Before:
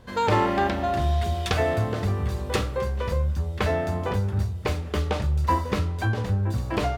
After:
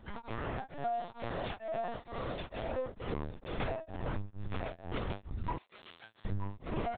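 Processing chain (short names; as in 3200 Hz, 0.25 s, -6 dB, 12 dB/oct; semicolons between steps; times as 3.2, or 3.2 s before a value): chorus voices 2, 0.35 Hz, delay 20 ms, depth 1.5 ms; 0.71–2.4 elliptic high-pass 220 Hz; feedback echo 0.929 s, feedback 19%, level -5.5 dB; LPC vocoder at 8 kHz pitch kept; 5.58–6.25 differentiator; compressor, threshold -31 dBFS, peak gain reduction 13.5 dB; beating tremolo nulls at 2.2 Hz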